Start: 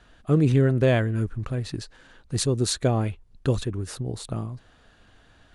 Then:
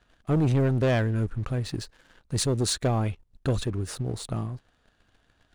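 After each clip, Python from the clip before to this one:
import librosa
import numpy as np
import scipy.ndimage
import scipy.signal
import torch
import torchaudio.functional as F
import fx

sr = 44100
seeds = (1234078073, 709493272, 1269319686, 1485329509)

y = fx.leveller(x, sr, passes=2)
y = y * 10.0 ** (-7.0 / 20.0)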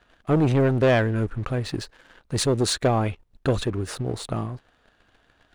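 y = fx.bass_treble(x, sr, bass_db=-6, treble_db=-6)
y = y * 10.0 ** (6.5 / 20.0)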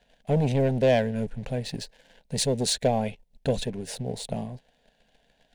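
y = fx.fixed_phaser(x, sr, hz=330.0, stages=6)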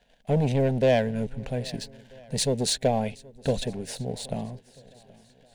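y = fx.echo_swing(x, sr, ms=1290, ratio=1.5, feedback_pct=33, wet_db=-23.5)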